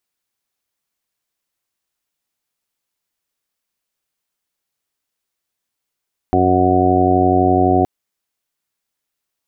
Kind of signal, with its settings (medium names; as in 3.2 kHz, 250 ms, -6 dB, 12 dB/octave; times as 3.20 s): steady additive tone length 1.52 s, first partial 91.9 Hz, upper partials -3.5/2.5/3/-5/-7/-3/5 dB, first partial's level -20 dB